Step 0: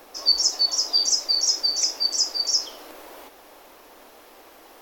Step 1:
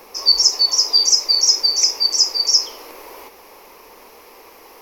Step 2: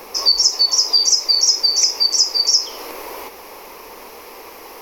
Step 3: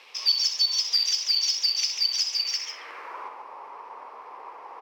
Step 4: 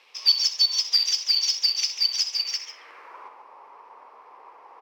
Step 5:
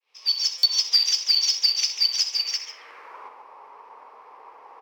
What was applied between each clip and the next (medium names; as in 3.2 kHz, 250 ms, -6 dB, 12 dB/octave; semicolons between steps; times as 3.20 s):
rippled EQ curve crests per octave 0.83, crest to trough 8 dB; trim +4 dB
compression 2:1, threshold -23 dBFS, peak gain reduction 8.5 dB; trim +6.5 dB
median filter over 5 samples; band-pass sweep 3.2 kHz -> 1 kHz, 2.32–3.34 s; loudspeakers at several distances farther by 22 m -9 dB, 49 m -7 dB
upward expansion 1.5:1, over -38 dBFS; trim +4 dB
fade-in on the opening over 0.62 s; on a send at -16 dB: reverberation RT60 0.55 s, pre-delay 3 ms; on the sum: buffer glitch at 0.58 s, samples 256, times 8; trim +1.5 dB